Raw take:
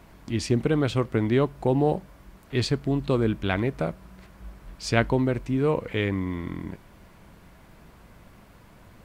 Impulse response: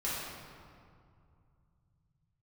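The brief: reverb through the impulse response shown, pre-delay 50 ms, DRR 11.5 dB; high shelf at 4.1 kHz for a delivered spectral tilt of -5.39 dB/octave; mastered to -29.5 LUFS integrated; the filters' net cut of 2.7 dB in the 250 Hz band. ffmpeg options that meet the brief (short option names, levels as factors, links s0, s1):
-filter_complex "[0:a]equalizer=f=250:t=o:g=-3.5,highshelf=f=4100:g=5,asplit=2[s0][s1];[1:a]atrim=start_sample=2205,adelay=50[s2];[s1][s2]afir=irnorm=-1:irlink=0,volume=0.133[s3];[s0][s3]amix=inputs=2:normalize=0,volume=0.708"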